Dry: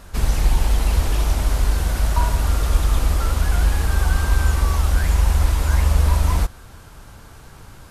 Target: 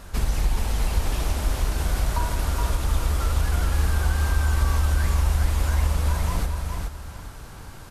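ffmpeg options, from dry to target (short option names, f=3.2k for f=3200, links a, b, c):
-af "acompressor=threshold=-22dB:ratio=2,aecho=1:1:419|838|1257:0.562|0.146|0.038"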